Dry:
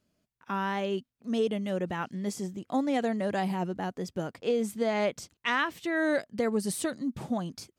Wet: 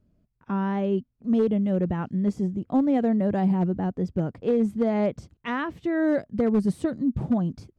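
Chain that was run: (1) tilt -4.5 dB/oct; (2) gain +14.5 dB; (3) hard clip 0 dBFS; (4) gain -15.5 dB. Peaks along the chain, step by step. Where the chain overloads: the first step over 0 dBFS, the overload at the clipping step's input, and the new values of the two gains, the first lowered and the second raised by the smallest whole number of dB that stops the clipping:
-10.5, +4.0, 0.0, -15.5 dBFS; step 2, 4.0 dB; step 2 +10.5 dB, step 4 -11.5 dB

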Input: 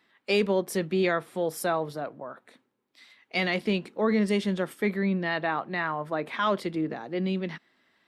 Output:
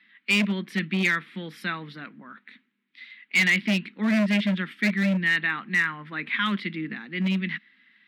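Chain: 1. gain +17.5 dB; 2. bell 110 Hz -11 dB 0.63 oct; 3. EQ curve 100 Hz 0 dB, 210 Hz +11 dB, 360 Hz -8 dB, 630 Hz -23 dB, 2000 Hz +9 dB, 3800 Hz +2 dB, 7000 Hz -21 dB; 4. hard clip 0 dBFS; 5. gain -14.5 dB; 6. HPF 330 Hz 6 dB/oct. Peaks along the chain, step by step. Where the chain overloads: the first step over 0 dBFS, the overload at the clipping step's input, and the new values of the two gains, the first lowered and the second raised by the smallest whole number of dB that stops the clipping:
+4.0, +4.0, +8.5, 0.0, -14.5, -11.0 dBFS; step 1, 8.5 dB; step 1 +8.5 dB, step 5 -5.5 dB

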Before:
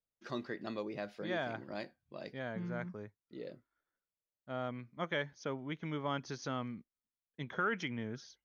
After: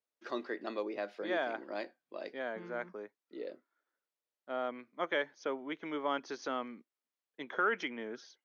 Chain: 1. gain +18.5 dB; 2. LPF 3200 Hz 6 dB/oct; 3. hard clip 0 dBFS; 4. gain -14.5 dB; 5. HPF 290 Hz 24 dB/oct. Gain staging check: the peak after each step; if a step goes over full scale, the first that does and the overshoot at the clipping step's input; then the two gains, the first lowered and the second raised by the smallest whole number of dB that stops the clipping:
-4.0, -4.5, -4.5, -19.0, -20.0 dBFS; no overload

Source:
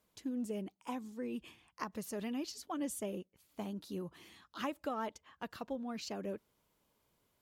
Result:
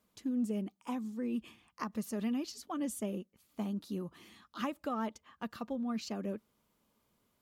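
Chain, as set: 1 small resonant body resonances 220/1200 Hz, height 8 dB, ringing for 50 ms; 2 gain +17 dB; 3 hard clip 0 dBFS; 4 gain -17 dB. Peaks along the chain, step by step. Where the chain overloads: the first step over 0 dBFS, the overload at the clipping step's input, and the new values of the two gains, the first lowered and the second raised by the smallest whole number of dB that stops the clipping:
-23.0, -6.0, -6.0, -23.0 dBFS; no overload

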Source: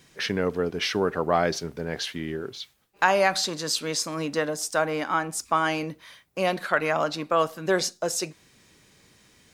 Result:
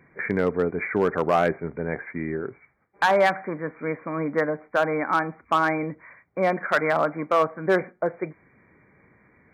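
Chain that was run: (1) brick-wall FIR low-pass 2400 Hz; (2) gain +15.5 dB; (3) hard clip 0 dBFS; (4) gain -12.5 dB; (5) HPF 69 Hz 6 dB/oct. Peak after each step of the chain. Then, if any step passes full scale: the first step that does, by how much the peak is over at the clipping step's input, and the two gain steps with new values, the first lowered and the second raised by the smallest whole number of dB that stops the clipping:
-6.0, +9.5, 0.0, -12.5, -11.5 dBFS; step 2, 9.5 dB; step 2 +5.5 dB, step 4 -2.5 dB

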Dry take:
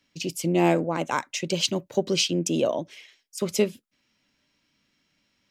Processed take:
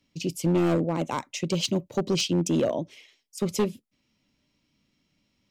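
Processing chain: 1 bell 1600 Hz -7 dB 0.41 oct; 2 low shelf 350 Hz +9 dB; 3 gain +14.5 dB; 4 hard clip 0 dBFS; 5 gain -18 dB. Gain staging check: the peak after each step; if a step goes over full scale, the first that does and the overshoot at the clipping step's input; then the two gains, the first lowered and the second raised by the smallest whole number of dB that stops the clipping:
-7.5, -4.5, +10.0, 0.0, -18.0 dBFS; step 3, 10.0 dB; step 3 +4.5 dB, step 5 -8 dB

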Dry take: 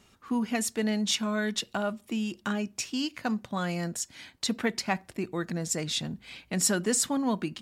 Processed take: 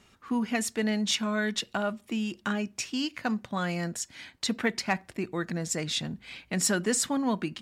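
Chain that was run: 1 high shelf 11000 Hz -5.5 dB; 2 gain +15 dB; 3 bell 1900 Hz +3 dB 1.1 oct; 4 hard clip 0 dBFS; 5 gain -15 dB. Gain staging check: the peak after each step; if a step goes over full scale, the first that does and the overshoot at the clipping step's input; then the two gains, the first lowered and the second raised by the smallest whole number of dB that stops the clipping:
-12.5, +2.5, +3.5, 0.0, -15.0 dBFS; step 2, 3.5 dB; step 2 +11 dB, step 5 -11 dB

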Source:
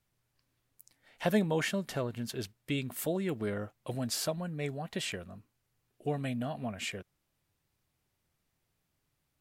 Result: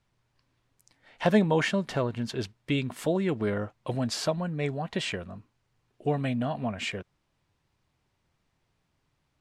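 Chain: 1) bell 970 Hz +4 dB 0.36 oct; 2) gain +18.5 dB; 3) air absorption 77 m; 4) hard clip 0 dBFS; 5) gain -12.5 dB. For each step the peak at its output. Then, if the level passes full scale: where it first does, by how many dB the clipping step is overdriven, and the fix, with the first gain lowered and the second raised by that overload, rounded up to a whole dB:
-14.0, +4.5, +4.0, 0.0, -12.5 dBFS; step 2, 4.0 dB; step 2 +14.5 dB, step 5 -8.5 dB

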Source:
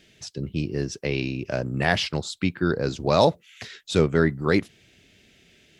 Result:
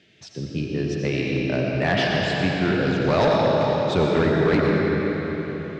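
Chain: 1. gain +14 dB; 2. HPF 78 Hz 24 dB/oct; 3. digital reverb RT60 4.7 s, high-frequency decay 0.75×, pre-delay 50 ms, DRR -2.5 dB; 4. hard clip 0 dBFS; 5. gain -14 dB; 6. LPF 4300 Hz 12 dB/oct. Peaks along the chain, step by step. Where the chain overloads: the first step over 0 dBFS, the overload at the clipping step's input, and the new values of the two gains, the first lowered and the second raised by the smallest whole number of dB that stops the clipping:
+9.5, +9.5, +10.0, 0.0, -14.0, -13.5 dBFS; step 1, 10.0 dB; step 1 +4 dB, step 5 -4 dB

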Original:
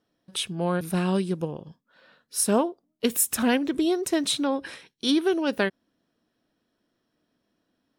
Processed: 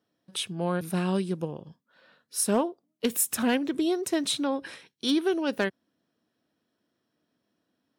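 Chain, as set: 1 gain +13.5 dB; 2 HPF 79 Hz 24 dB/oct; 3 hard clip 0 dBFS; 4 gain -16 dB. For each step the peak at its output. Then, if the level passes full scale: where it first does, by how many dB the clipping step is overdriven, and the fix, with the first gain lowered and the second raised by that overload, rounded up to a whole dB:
+4.5, +5.0, 0.0, -16.0 dBFS; step 1, 5.0 dB; step 1 +8.5 dB, step 4 -11 dB

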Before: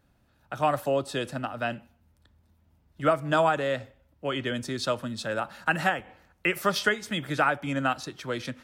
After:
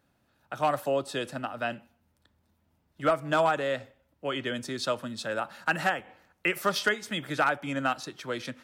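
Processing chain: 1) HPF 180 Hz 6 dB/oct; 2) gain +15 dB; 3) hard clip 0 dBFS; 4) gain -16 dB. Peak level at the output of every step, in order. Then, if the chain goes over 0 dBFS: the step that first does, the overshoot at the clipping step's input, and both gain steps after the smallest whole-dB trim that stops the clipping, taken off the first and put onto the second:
-11.5, +3.5, 0.0, -16.0 dBFS; step 2, 3.5 dB; step 2 +11 dB, step 4 -12 dB

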